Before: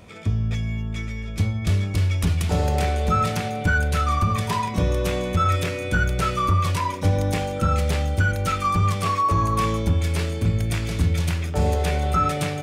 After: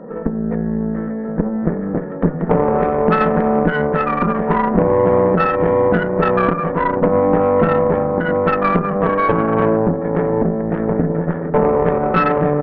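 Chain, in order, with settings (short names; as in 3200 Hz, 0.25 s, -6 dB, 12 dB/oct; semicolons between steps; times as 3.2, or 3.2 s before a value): comb 2.3 ms, depth 34%; small resonant body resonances 230/480 Hz, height 16 dB, ringing for 20 ms; compressor 3:1, threshold -15 dBFS, peak gain reduction 7.5 dB; FFT band-pass 140–1900 Hz; added harmonics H 4 -13 dB, 8 -39 dB, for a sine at -5.5 dBFS; gain +3 dB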